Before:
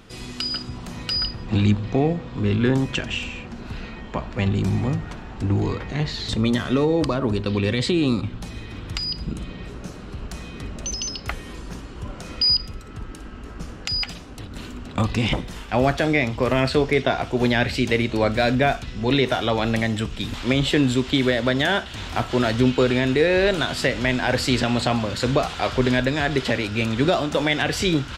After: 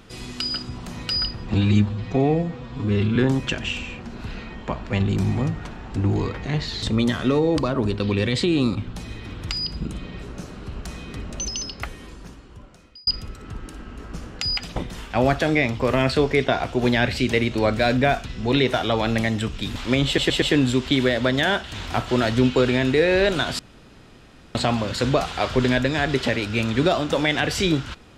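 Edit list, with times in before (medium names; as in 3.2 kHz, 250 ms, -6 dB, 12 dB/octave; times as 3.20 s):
1.54–2.62 s: stretch 1.5×
10.89–12.53 s: fade out
14.22–15.34 s: delete
20.64 s: stutter 0.12 s, 4 plays
23.81–24.77 s: room tone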